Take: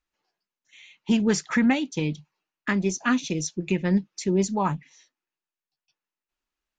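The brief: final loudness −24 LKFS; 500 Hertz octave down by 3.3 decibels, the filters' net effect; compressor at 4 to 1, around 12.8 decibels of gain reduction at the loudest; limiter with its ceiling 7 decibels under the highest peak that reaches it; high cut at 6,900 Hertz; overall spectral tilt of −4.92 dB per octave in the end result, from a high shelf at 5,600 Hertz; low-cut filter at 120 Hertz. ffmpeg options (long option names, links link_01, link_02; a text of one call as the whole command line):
ffmpeg -i in.wav -af "highpass=120,lowpass=6900,equalizer=frequency=500:width_type=o:gain=-4.5,highshelf=frequency=5600:gain=-6,acompressor=threshold=-34dB:ratio=4,volume=15dB,alimiter=limit=-13dB:level=0:latency=1" out.wav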